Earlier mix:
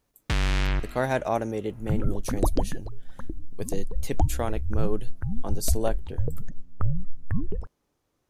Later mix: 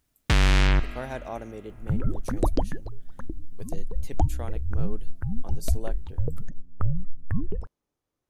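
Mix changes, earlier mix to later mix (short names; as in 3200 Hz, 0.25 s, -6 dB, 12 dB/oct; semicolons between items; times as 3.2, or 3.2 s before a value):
speech -9.5 dB; first sound +5.0 dB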